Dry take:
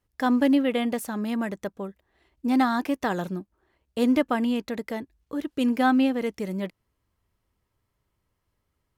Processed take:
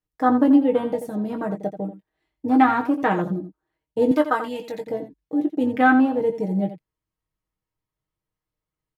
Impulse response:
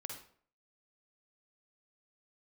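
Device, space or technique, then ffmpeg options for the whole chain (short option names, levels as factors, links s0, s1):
slapback doubling: -filter_complex "[0:a]afwtdn=0.0316,asplit=3[s0][s1][s2];[s1]adelay=20,volume=0.398[s3];[s2]adelay=85,volume=0.282[s4];[s0][s3][s4]amix=inputs=3:normalize=0,asettb=1/sr,asplit=3[s5][s6][s7];[s5]atrim=end=4.114[s8];[s6]atrim=start=4.11:end=4.87,asetpts=PTS-STARTPTS,afade=t=in:d=0.004:c=qsin,afade=t=out:st=0.756:d=0.004:c=qsin,tiltshelf=f=880:g=-9.5[s9];[s7]atrim=start=4.866[s10];[s8][s9]acrossfade=d=0.004:c1=hsin:c2=qsin[s11];[s11][s10]acrossfade=d=0.004:c1=qsin:c2=hsin,aecho=1:1:6.4:0.62,volume=1.58"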